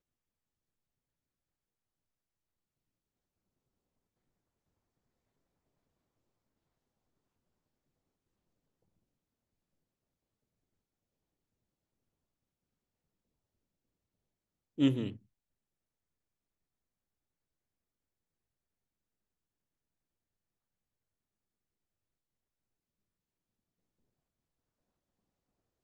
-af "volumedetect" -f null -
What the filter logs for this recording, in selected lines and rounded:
mean_volume: -47.4 dB
max_volume: -14.8 dB